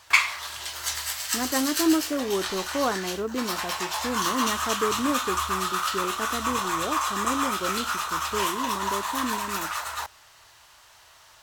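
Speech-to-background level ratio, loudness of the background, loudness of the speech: −3.5 dB, −27.5 LKFS, −31.0 LKFS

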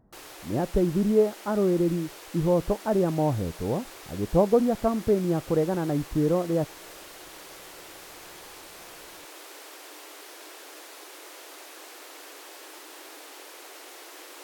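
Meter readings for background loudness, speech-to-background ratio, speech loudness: −43.5 LKFS, 18.0 dB, −25.5 LKFS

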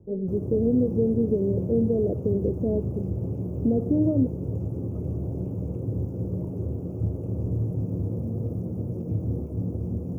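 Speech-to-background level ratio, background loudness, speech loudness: 5.0 dB, −30.5 LKFS, −25.5 LKFS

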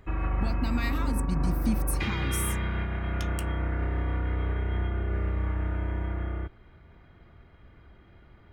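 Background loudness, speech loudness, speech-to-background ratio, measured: −31.0 LKFS, −34.5 LKFS, −3.5 dB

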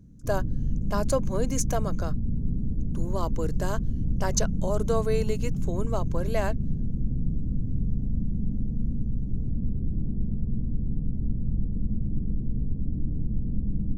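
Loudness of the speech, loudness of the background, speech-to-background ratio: −31.5 LKFS, −31.0 LKFS, −0.5 dB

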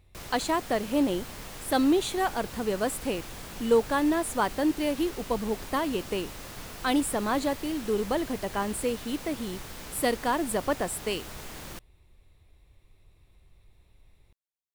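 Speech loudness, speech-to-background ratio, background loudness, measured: −28.5 LKFS, 12.5 dB, −41.0 LKFS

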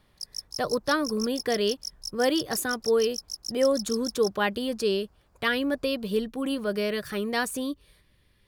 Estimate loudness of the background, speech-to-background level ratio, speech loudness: −36.0 LKFS, 8.5 dB, −27.5 LKFS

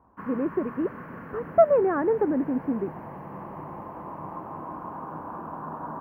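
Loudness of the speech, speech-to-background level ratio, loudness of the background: −25.0 LKFS, 14.0 dB, −39.0 LKFS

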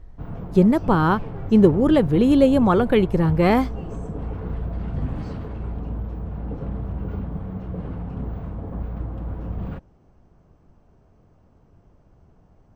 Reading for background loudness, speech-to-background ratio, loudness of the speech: −32.0 LKFS, 14.0 dB, −18.0 LKFS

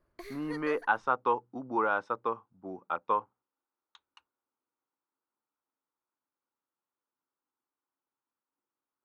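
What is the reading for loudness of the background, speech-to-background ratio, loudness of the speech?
−47.5 LKFS, 15.5 dB, −32.0 LKFS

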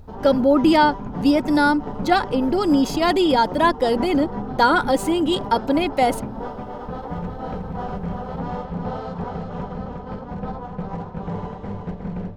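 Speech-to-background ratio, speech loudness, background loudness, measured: 11.5 dB, −19.5 LKFS, −31.0 LKFS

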